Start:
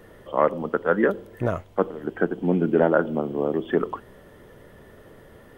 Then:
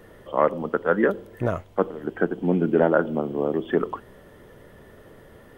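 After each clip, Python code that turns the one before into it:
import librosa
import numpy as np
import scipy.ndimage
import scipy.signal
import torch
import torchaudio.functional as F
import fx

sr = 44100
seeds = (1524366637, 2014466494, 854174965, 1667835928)

y = x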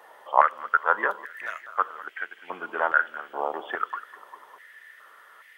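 y = fx.echo_feedback(x, sr, ms=200, feedback_pct=57, wet_db=-18.0)
y = fx.filter_held_highpass(y, sr, hz=2.4, low_hz=860.0, high_hz=2100.0)
y = y * librosa.db_to_amplitude(-1.0)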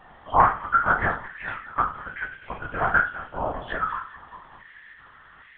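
y = fx.spec_trails(x, sr, decay_s=0.36)
y = fx.lpc_vocoder(y, sr, seeds[0], excitation='whisper', order=10)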